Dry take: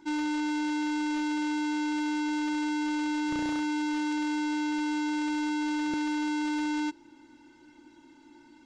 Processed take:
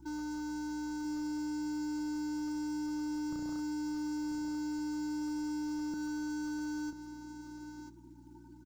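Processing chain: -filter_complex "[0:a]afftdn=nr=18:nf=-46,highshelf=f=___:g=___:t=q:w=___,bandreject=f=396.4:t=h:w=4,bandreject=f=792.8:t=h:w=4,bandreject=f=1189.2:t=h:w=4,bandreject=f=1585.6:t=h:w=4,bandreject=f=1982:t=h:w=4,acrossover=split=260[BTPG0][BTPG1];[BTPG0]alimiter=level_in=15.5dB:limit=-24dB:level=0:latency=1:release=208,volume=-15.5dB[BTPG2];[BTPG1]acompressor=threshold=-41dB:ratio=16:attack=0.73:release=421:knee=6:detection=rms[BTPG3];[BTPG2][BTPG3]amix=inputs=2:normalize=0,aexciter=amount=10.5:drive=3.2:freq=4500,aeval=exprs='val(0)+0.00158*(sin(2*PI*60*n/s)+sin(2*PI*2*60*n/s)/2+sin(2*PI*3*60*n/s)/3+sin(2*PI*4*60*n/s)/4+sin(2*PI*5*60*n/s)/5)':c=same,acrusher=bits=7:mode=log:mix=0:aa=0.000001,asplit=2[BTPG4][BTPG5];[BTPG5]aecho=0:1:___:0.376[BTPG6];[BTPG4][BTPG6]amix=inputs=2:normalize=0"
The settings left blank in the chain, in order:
1700, -6.5, 3, 990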